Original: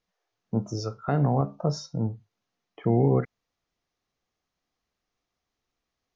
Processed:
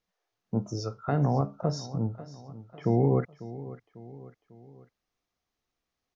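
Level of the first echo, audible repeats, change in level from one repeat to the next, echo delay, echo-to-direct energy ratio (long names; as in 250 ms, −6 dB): −16.0 dB, 3, −6.0 dB, 547 ms, −15.0 dB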